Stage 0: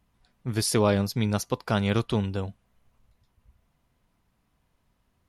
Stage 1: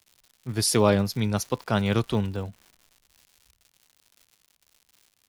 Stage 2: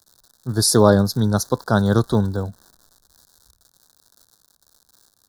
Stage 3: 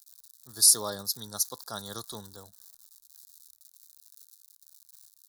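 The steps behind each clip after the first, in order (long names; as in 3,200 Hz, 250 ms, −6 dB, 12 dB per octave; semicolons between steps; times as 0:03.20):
surface crackle 190 per second −36 dBFS; multiband upward and downward expander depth 40%
Chebyshev band-stop filter 1,600–3,800 Hz, order 3; level +7 dB
first-order pre-emphasis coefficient 0.97; notch filter 1,500 Hz, Q 7.7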